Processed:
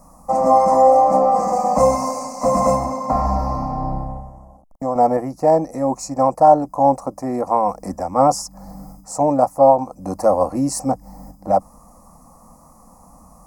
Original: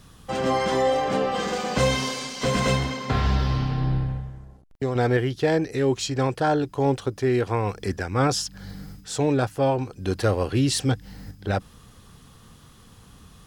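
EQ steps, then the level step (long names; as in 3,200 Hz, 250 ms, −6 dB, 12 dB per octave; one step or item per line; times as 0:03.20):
Butterworth band-reject 3,300 Hz, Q 0.72
flat-topped bell 850 Hz +9.5 dB
phaser with its sweep stopped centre 410 Hz, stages 6
+4.5 dB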